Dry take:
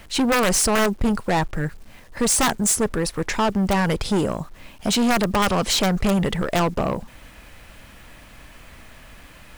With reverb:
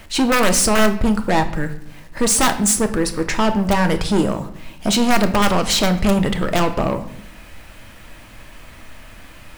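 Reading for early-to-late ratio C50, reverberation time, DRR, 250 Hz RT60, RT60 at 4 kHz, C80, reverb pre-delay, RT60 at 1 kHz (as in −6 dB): 12.0 dB, 0.70 s, 7.0 dB, 1.1 s, 0.55 s, 15.5 dB, 3 ms, 0.65 s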